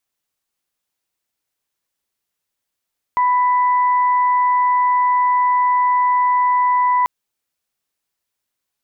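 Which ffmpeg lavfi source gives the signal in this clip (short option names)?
-f lavfi -i "aevalsrc='0.237*sin(2*PI*992*t)+0.0422*sin(2*PI*1984*t)':d=3.89:s=44100"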